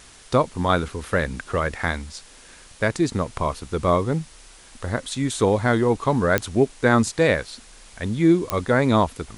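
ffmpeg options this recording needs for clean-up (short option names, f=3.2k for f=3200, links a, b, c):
-af "adeclick=t=4,afftdn=nr=19:nf=-47"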